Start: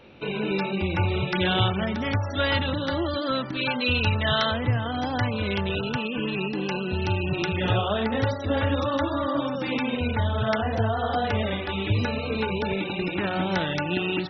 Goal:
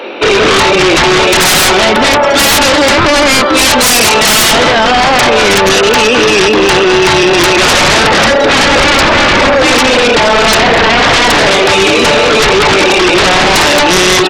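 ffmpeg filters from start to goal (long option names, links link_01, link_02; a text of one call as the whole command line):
ffmpeg -i in.wav -filter_complex "[0:a]highpass=frequency=330:width=0.5412,highpass=frequency=330:width=1.3066,highshelf=frequency=2800:gain=-4.5,asplit=2[link_01][link_02];[link_02]aecho=0:1:208:0.211[link_03];[link_01][link_03]amix=inputs=2:normalize=0,aeval=exprs='0.266*sin(PI/2*8.91*val(0)/0.266)':channel_layout=same,volume=7.5dB" out.wav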